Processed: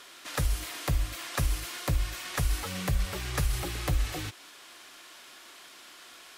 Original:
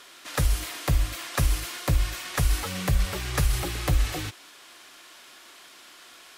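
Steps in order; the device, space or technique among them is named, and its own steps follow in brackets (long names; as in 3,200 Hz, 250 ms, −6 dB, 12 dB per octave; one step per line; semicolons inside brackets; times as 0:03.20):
parallel compression (in parallel at −2 dB: downward compressor, threshold −35 dBFS, peak gain reduction 17 dB)
on the sum: level −6 dB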